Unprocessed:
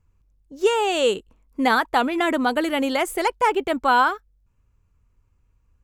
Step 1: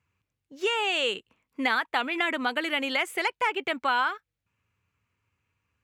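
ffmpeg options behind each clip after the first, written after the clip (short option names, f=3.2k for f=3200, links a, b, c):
-af "equalizer=f=2.4k:t=o:w=1.9:g=14,acompressor=threshold=-19dB:ratio=2,highpass=f=92:w=0.5412,highpass=f=92:w=1.3066,volume=-7.5dB"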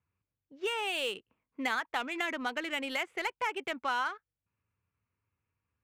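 -af "adynamicsmooth=sensitivity=5:basefreq=2.4k,volume=-6.5dB"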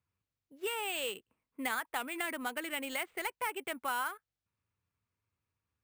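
-af "acrusher=samples=4:mix=1:aa=0.000001,volume=-3dB"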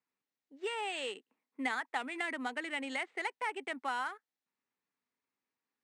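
-af "highpass=f=200:w=0.5412,highpass=f=200:w=1.3066,equalizer=f=260:t=q:w=4:g=6,equalizer=f=430:t=q:w=4:g=3,equalizer=f=810:t=q:w=4:g=6,equalizer=f=1.9k:t=q:w=4:g=7,equalizer=f=4k:t=q:w=4:g=3,lowpass=f=7.6k:w=0.5412,lowpass=f=7.6k:w=1.3066,volume=-3.5dB"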